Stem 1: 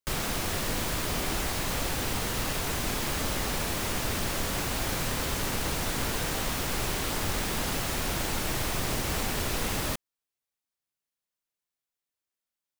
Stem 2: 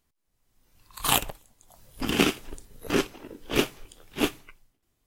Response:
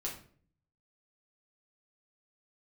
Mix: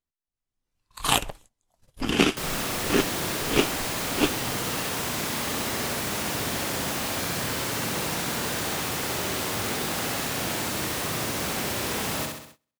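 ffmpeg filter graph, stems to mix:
-filter_complex "[0:a]highpass=120,adelay=2300,volume=0.5dB,asplit=2[a][b];[b]volume=-3.5dB[c];[1:a]lowpass=9.8k,volume=1.5dB[d];[c]aecho=0:1:65|130|195|260|325|390|455|520:1|0.54|0.292|0.157|0.085|0.0459|0.0248|0.0134[e];[a][d][e]amix=inputs=3:normalize=0,agate=range=-19dB:threshold=-49dB:ratio=16:detection=peak"

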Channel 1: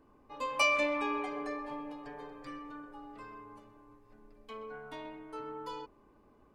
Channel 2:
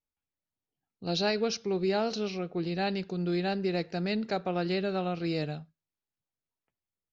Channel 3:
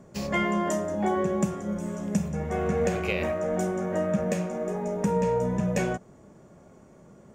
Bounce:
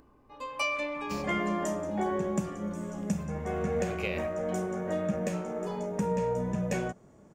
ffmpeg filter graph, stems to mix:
-filter_complex "[0:a]acompressor=mode=upward:threshold=-52dB:ratio=2.5,aeval=exprs='val(0)+0.000562*(sin(2*PI*60*n/s)+sin(2*PI*2*60*n/s)/2+sin(2*PI*3*60*n/s)/3+sin(2*PI*4*60*n/s)/4+sin(2*PI*5*60*n/s)/5)':c=same,volume=-3dB[a];[2:a]adelay=950,volume=-4.5dB[b];[a][b]amix=inputs=2:normalize=0"

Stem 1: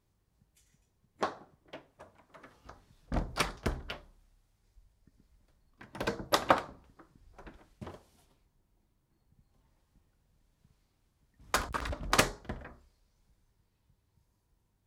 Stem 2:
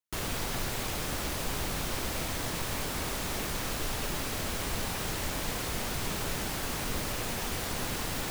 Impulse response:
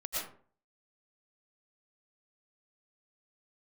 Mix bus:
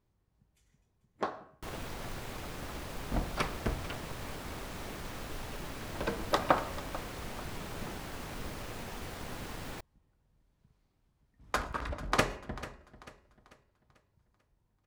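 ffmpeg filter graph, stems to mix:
-filter_complex "[0:a]bandreject=f=91:t=h:w=4,bandreject=f=182:t=h:w=4,bandreject=f=273:t=h:w=4,bandreject=f=364:t=h:w=4,bandreject=f=455:t=h:w=4,bandreject=f=546:t=h:w=4,bandreject=f=637:t=h:w=4,bandreject=f=728:t=h:w=4,bandreject=f=819:t=h:w=4,bandreject=f=910:t=h:w=4,bandreject=f=1.001k:t=h:w=4,bandreject=f=1.092k:t=h:w=4,bandreject=f=1.183k:t=h:w=4,bandreject=f=1.274k:t=h:w=4,bandreject=f=1.365k:t=h:w=4,bandreject=f=1.456k:t=h:w=4,bandreject=f=1.547k:t=h:w=4,bandreject=f=1.638k:t=h:w=4,bandreject=f=1.729k:t=h:w=4,bandreject=f=1.82k:t=h:w=4,bandreject=f=1.911k:t=h:w=4,bandreject=f=2.002k:t=h:w=4,bandreject=f=2.093k:t=h:w=4,bandreject=f=2.184k:t=h:w=4,bandreject=f=2.275k:t=h:w=4,bandreject=f=2.366k:t=h:w=4,bandreject=f=2.457k:t=h:w=4,bandreject=f=2.548k:t=h:w=4,bandreject=f=2.639k:t=h:w=4,bandreject=f=2.73k:t=h:w=4,bandreject=f=2.821k:t=h:w=4,bandreject=f=2.912k:t=h:w=4,bandreject=f=3.003k:t=h:w=4,volume=-0.5dB,asplit=3[a][b][c];[b]volume=-23dB[d];[c]volume=-16dB[e];[1:a]acrusher=bits=2:mode=log:mix=0:aa=0.000001,adelay=1500,volume=-7dB[f];[2:a]atrim=start_sample=2205[g];[d][g]afir=irnorm=-1:irlink=0[h];[e]aecho=0:1:442|884|1326|1768|2210|2652:1|0.4|0.16|0.064|0.0256|0.0102[i];[a][f][h][i]amix=inputs=4:normalize=0,highshelf=f=3.7k:g=-9.5"

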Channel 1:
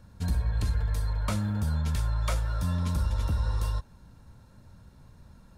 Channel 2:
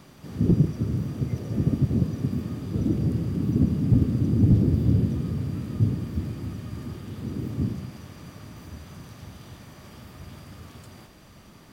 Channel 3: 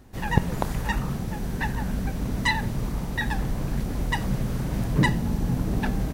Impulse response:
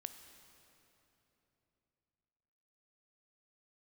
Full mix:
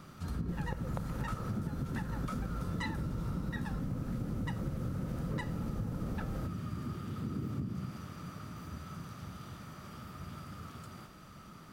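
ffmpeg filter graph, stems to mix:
-filter_complex "[0:a]volume=-10dB[a];[1:a]equalizer=f=170:w=2.4:g=5.5,acompressor=threshold=-22dB:ratio=6,volume=-5dB[b];[2:a]equalizer=f=520:w=4.8:g=10.5,adelay=350,volume=-9.5dB[c];[a][b][c]amix=inputs=3:normalize=0,equalizer=f=1.3k:t=o:w=0.24:g=15,acompressor=threshold=-33dB:ratio=6"

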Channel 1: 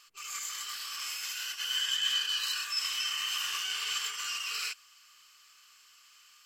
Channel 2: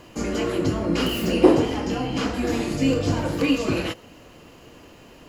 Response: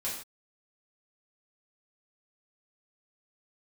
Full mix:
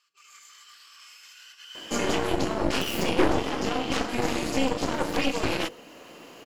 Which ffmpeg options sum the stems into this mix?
-filter_complex "[0:a]highpass=180,highshelf=f=8.8k:g=-11.5,volume=-11.5dB,asplit=2[a][b];[b]volume=-12dB[c];[1:a]highpass=240,bandreject=f=50:t=h:w=6,bandreject=f=100:t=h:w=6,bandreject=f=150:t=h:w=6,bandreject=f=200:t=h:w=6,bandreject=f=250:t=h:w=6,bandreject=f=300:t=h:w=6,bandreject=f=350:t=h:w=6,bandreject=f=400:t=h:w=6,bandreject=f=450:t=h:w=6,bandreject=f=500:t=h:w=6,aeval=exprs='0.668*(cos(1*acos(clip(val(0)/0.668,-1,1)))-cos(1*PI/2))+0.168*(cos(8*acos(clip(val(0)/0.668,-1,1)))-cos(8*PI/2))':c=same,adelay=1750,volume=2.5dB[d];[2:a]atrim=start_sample=2205[e];[c][e]afir=irnorm=-1:irlink=0[f];[a][d][f]amix=inputs=3:normalize=0,alimiter=limit=-11.5dB:level=0:latency=1:release=447"

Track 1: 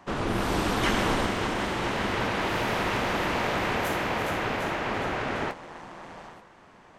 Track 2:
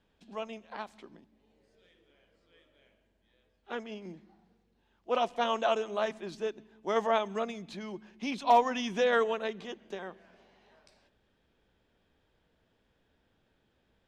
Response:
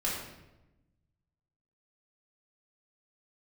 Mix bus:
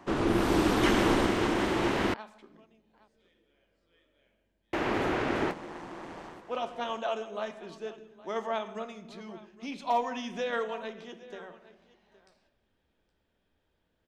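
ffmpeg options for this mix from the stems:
-filter_complex "[0:a]equalizer=f=330:t=o:w=0.7:g=8.5,volume=-2dB,asplit=3[a][b][c];[a]atrim=end=2.14,asetpts=PTS-STARTPTS,afade=t=out:st=2.136:d=0.004:c=hsin[d];[b]atrim=start=2.14:end=4.73,asetpts=PTS-STARTPTS,volume=0[e];[c]atrim=start=4.73,asetpts=PTS-STARTPTS,afade=t=in:d=0.004:c=hsin[f];[d][e][f]concat=n=3:v=0:a=1[g];[1:a]adelay=1400,volume=-6.5dB,asplit=3[h][i][j];[i]volume=-13dB[k];[j]volume=-17.5dB[l];[2:a]atrim=start_sample=2205[m];[k][m]afir=irnorm=-1:irlink=0[n];[l]aecho=0:1:817:1[o];[g][h][n][o]amix=inputs=4:normalize=0"

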